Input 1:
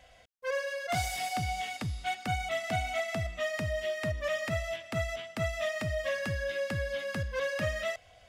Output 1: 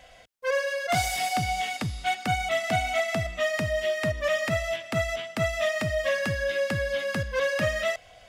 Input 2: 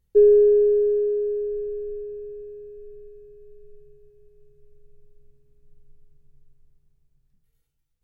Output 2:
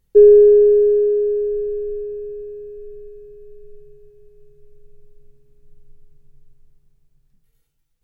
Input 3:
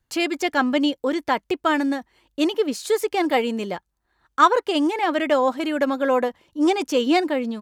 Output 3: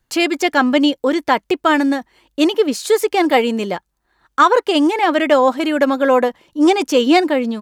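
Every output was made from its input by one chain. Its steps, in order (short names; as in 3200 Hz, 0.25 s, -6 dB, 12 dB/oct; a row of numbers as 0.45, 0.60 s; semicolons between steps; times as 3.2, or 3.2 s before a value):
bell 76 Hz -7.5 dB 0.86 oct; maximiser +7.5 dB; gain -1 dB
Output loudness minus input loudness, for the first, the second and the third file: +6.0, +6.0, +6.0 LU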